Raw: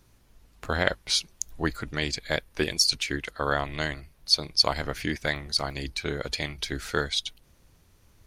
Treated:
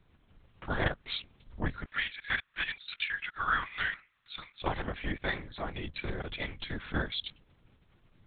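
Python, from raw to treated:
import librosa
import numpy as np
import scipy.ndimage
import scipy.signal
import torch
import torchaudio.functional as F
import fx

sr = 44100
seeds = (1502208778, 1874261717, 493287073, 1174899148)

y = fx.highpass_res(x, sr, hz=1400.0, q=1.9, at=(1.85, 4.62))
y = fx.lpc_vocoder(y, sr, seeds[0], excitation='whisper', order=8)
y = y * 10.0 ** (-4.5 / 20.0)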